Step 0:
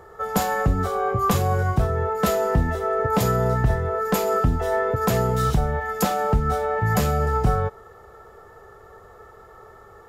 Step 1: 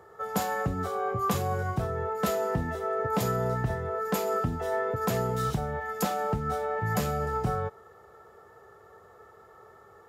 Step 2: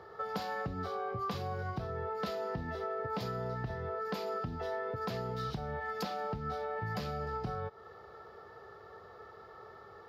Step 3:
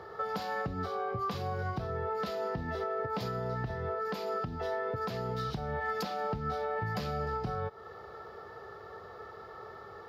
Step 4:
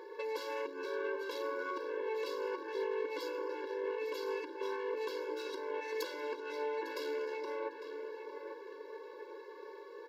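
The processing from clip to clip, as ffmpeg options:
-af "highpass=98,volume=-6.5dB"
-af "acompressor=threshold=-37dB:ratio=4,highshelf=f=6.1k:t=q:w=3:g=-10,volume=1dB"
-af "alimiter=level_in=6dB:limit=-24dB:level=0:latency=1:release=343,volume=-6dB,volume=5dB"
-filter_complex "[0:a]aeval=exprs='(tanh(35.5*val(0)+0.75)-tanh(0.75))/35.5':c=same,asplit=2[a][b];[b]adelay=852,lowpass=f=2.5k:p=1,volume=-7.5dB,asplit=2[c][d];[d]adelay=852,lowpass=f=2.5k:p=1,volume=0.41,asplit=2[e][f];[f]adelay=852,lowpass=f=2.5k:p=1,volume=0.41,asplit=2[g][h];[h]adelay=852,lowpass=f=2.5k:p=1,volume=0.41,asplit=2[i][j];[j]adelay=852,lowpass=f=2.5k:p=1,volume=0.41[k];[a][c][e][g][i][k]amix=inputs=6:normalize=0,afftfilt=real='re*eq(mod(floor(b*sr/1024/290),2),1)':imag='im*eq(mod(floor(b*sr/1024/290),2),1)':win_size=1024:overlap=0.75,volume=5dB"

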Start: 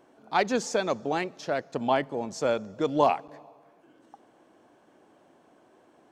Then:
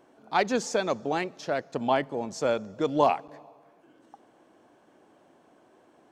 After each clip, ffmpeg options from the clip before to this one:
-af anull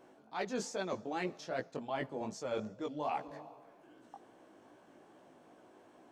-af "areverse,acompressor=threshold=-33dB:ratio=8,areverse,flanger=delay=15.5:depth=4.7:speed=2.5,volume=2dB"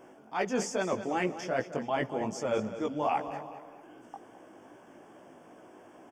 -filter_complex "[0:a]asuperstop=centerf=4000:order=4:qfactor=3,asplit=2[a][b];[b]aecho=0:1:211|422|633|844:0.237|0.0925|0.0361|0.0141[c];[a][c]amix=inputs=2:normalize=0,volume=7dB"

